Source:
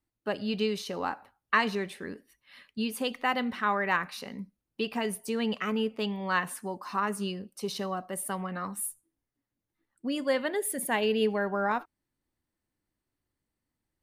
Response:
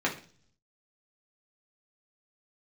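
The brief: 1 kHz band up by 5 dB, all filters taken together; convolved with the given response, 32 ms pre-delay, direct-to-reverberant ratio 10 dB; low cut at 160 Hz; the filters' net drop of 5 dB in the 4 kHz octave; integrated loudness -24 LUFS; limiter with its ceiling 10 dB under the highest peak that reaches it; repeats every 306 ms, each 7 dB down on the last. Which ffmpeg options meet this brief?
-filter_complex "[0:a]highpass=160,equalizer=f=1000:t=o:g=6.5,equalizer=f=4000:t=o:g=-8.5,alimiter=limit=0.119:level=0:latency=1,aecho=1:1:306|612|918|1224|1530:0.447|0.201|0.0905|0.0407|0.0183,asplit=2[s0][s1];[1:a]atrim=start_sample=2205,adelay=32[s2];[s1][s2]afir=irnorm=-1:irlink=0,volume=0.1[s3];[s0][s3]amix=inputs=2:normalize=0,volume=2.11"

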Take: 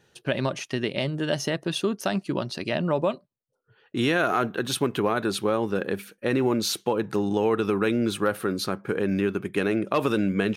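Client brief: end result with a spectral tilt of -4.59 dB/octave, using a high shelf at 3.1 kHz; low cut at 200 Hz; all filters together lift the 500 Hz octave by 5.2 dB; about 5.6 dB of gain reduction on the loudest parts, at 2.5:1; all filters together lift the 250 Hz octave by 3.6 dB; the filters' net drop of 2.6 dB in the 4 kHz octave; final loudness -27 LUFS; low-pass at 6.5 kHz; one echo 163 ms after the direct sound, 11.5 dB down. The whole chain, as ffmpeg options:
-af "highpass=200,lowpass=6500,equalizer=f=250:t=o:g=5,equalizer=f=500:t=o:g=5,highshelf=f=3100:g=7,equalizer=f=4000:t=o:g=-8,acompressor=threshold=0.0708:ratio=2.5,aecho=1:1:163:0.266,volume=0.944"

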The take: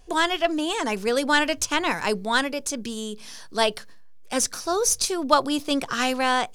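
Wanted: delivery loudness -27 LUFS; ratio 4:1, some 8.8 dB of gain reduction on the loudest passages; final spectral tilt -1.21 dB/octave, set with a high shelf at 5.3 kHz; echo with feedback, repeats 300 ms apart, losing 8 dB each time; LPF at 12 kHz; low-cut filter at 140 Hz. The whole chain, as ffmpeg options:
-af "highpass=140,lowpass=12000,highshelf=f=5300:g=7.5,acompressor=threshold=0.0708:ratio=4,aecho=1:1:300|600|900|1200|1500:0.398|0.159|0.0637|0.0255|0.0102,volume=0.944"

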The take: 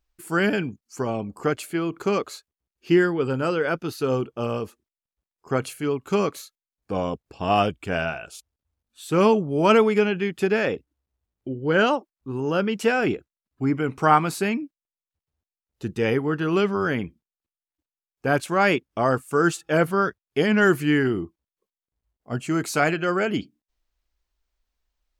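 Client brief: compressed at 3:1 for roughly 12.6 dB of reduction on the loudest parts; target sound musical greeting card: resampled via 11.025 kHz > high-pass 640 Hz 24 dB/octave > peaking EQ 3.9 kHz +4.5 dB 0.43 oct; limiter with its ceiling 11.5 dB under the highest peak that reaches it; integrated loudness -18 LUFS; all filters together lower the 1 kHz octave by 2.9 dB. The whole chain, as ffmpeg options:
-af "equalizer=f=1000:t=o:g=-3.5,acompressor=threshold=0.0282:ratio=3,alimiter=level_in=1.78:limit=0.0631:level=0:latency=1,volume=0.562,aresample=11025,aresample=44100,highpass=f=640:w=0.5412,highpass=f=640:w=1.3066,equalizer=f=3900:t=o:w=0.43:g=4.5,volume=21.1"

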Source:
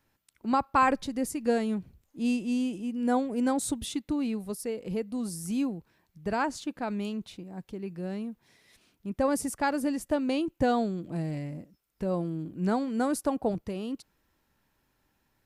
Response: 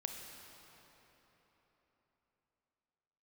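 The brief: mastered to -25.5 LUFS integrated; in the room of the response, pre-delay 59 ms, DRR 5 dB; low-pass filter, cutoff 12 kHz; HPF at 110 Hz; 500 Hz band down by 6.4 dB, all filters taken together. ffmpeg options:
-filter_complex "[0:a]highpass=110,lowpass=12000,equalizer=f=500:t=o:g=-7.5,asplit=2[s0][s1];[1:a]atrim=start_sample=2205,adelay=59[s2];[s1][s2]afir=irnorm=-1:irlink=0,volume=0.631[s3];[s0][s3]amix=inputs=2:normalize=0,volume=2"

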